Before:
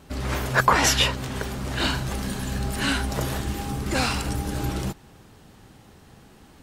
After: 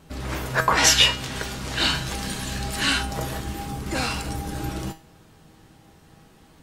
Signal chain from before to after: 0.77–3.03 s: peaking EQ 4.4 kHz +7.5 dB 2.9 oct; feedback comb 160 Hz, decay 0.36 s, harmonics all, mix 70%; trim +6 dB

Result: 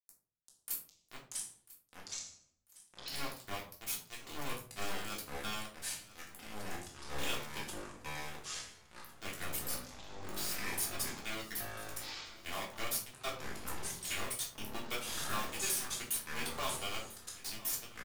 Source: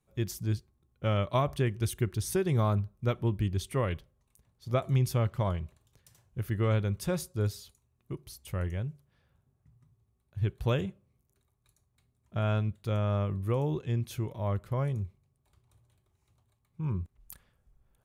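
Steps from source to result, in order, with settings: reverse the whole clip; reverb removal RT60 1.8 s; differentiator; comb 3.6 ms, depth 48%; compression 4:1, threshold -57 dBFS, peak gain reduction 20 dB; small samples zeroed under -54 dBFS; feedback delay 994 ms, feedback 30%, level -18.5 dB; simulated room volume 300 m³, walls furnished, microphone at 3.3 m; ever faster or slower copies 354 ms, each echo -6 st, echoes 3; trim +16 dB

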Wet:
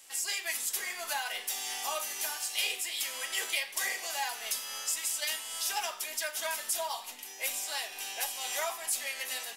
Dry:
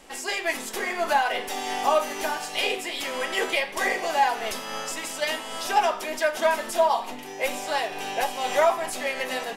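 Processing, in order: pre-emphasis filter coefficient 0.97; trim +3 dB

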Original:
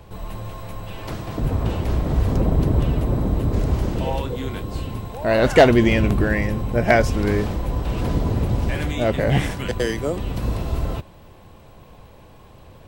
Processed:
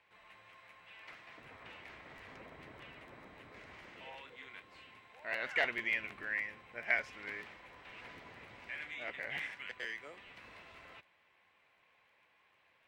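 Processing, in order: band-pass filter 2.1 kHz, Q 3.1; crackling interface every 0.15 s, samples 512, repeat, from 0.52 s; trim -7 dB

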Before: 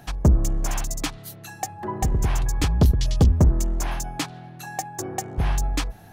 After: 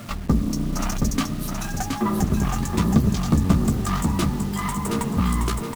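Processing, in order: gliding tape speed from 83% -> 130%; band-stop 520 Hz, Q 13; in parallel at +2.5 dB: peak limiter -19 dBFS, peak gain reduction 9.5 dB; on the sum: compression 4:1, threshold -13 dBFS, peak gain reduction 4 dB; one-sided clip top -31 dBFS; small resonant body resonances 210/1200 Hz, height 14 dB, ringing for 35 ms; flange 1 Hz, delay 8.1 ms, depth 7.2 ms, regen -27%; bit crusher 7-bit; on a send: feedback delay 722 ms, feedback 33%, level -4.5 dB

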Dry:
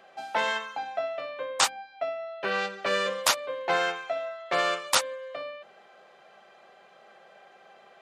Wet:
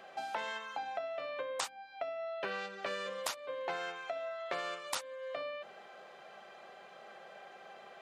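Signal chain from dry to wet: compression 6:1, threshold -38 dBFS, peak gain reduction 18.5 dB; trim +1.5 dB

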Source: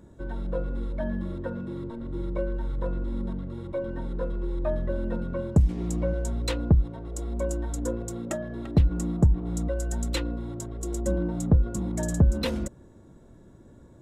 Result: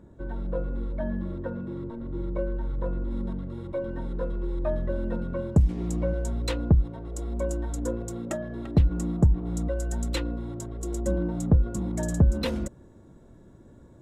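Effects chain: treble shelf 3.2 kHz -10.5 dB, from 3.11 s -2.5 dB

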